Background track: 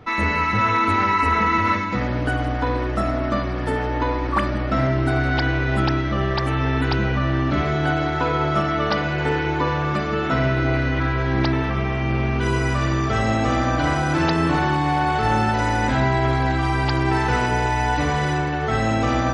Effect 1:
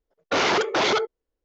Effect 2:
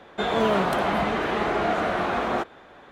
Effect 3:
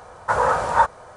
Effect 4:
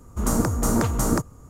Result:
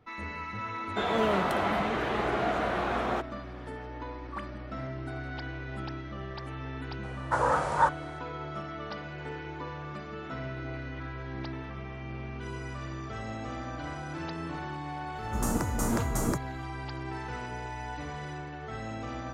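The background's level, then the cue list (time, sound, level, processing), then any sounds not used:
background track -17.5 dB
0.78 add 2 -5 dB
7.03 add 3 -7 dB
15.16 add 4 -7.5 dB
not used: 1

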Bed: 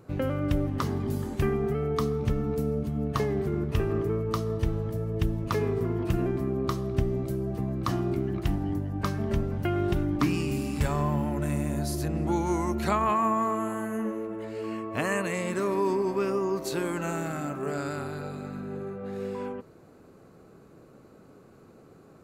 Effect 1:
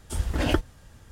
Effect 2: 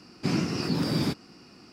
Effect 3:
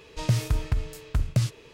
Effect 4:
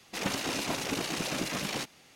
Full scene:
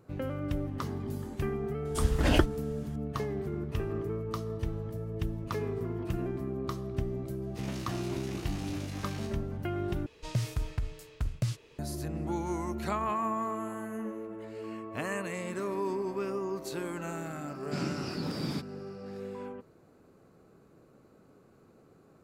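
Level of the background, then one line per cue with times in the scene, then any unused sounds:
bed -6.5 dB
1.85 add 1 -0.5 dB
7.42 add 4 -14.5 dB + spectral trails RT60 0.43 s
10.06 replace with 3 -7.5 dB
17.48 add 2 -8 dB

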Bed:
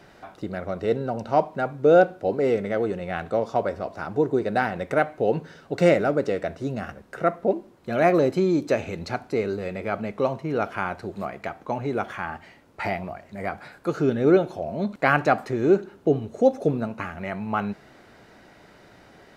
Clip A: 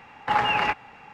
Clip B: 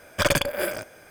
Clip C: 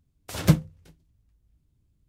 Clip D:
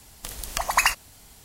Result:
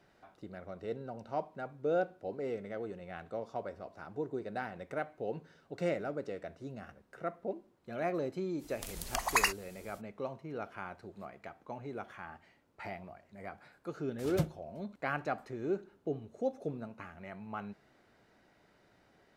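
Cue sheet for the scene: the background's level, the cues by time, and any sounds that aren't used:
bed -15.5 dB
8.58 add D -8 dB, fades 0.05 s
13.9 add C -14.5 dB
not used: A, B

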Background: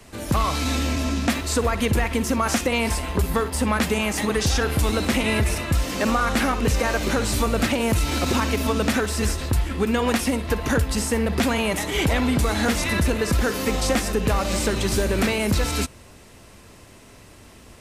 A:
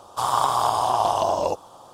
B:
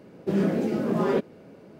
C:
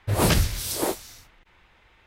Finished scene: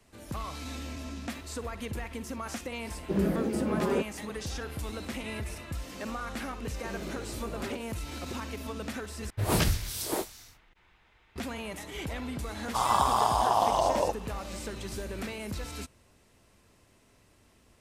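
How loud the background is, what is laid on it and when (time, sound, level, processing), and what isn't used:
background -15.5 dB
2.82 add B -4.5 dB
6.57 add B -14 dB + HPF 300 Hz 6 dB/oct
9.3 replace with C -5.5 dB + notch 540 Hz, Q 14
12.57 add A -4 dB

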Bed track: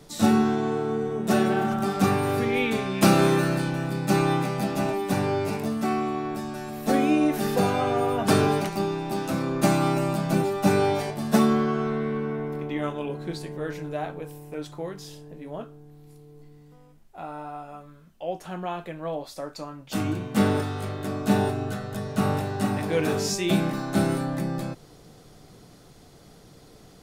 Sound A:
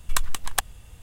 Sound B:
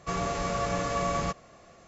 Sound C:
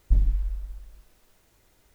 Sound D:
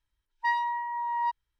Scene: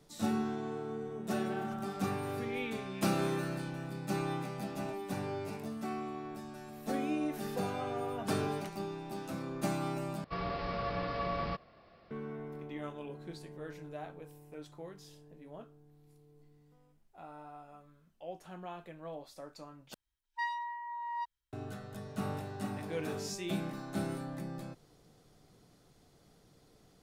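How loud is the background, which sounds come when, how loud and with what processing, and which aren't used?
bed track -13 dB
10.24 replace with B -6.5 dB + downsampling 11025 Hz
19.94 replace with D -10 dB + high shelf 3000 Hz +7.5 dB
not used: A, C

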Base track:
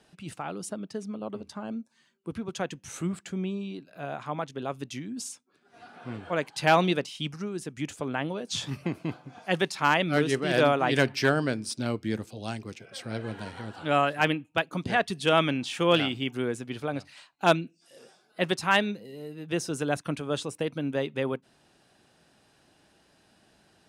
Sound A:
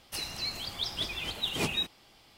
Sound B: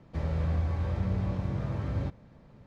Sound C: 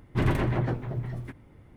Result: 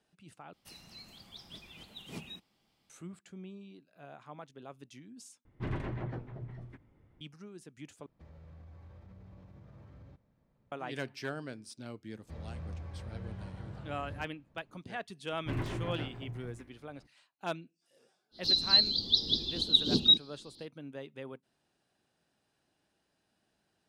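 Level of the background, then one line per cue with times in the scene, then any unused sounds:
base track -15 dB
0.53 replace with A -17 dB + bell 190 Hz +10 dB 1.1 oct
5.45 replace with C -11.5 dB + air absorption 79 m
8.06 replace with B -18 dB + limiter -28.5 dBFS
12.15 add B -13.5 dB
15.31 add C -4 dB + resonator 58 Hz, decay 0.9 s, mix 70%
18.31 add A -0.5 dB, fades 0.05 s + EQ curve 140 Hz 0 dB, 240 Hz +9 dB, 430 Hz +1 dB, 680 Hz -13 dB, 1000 Hz -15 dB, 2300 Hz -30 dB, 4000 Hz +14 dB, 9500 Hz -26 dB, 14000 Hz -19 dB

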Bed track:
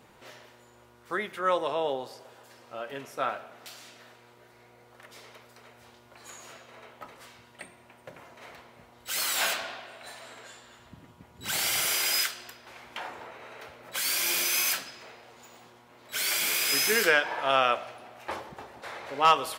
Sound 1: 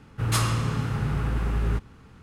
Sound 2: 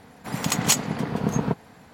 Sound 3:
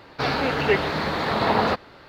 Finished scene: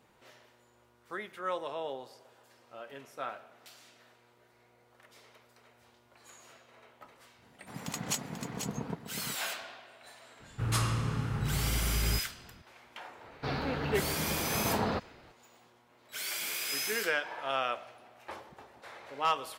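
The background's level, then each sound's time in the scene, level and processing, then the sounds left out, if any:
bed track -8.5 dB
7.42 add 2 -13.5 dB + echo 0.489 s -7 dB
10.4 add 1 -6 dB
13.24 add 3 -13 dB + low shelf 300 Hz +9 dB

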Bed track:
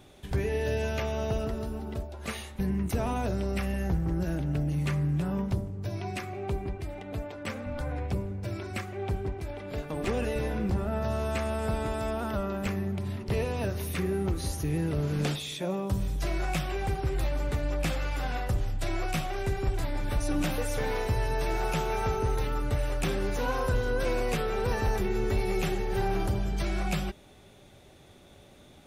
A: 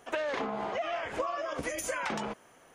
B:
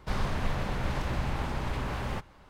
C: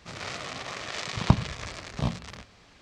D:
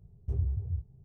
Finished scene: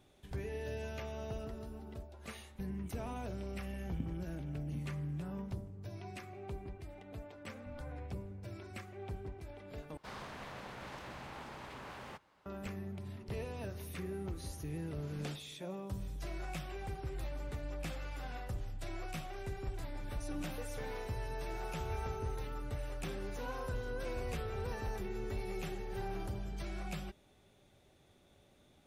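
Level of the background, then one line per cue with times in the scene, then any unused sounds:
bed track -12 dB
2.7 add C -12 dB + vocal tract filter i
9.97 replace with B -10.5 dB + HPF 330 Hz 6 dB/oct
21.52 add D -12 dB
23.88 add D -8 dB + limiter -30.5 dBFS
not used: A

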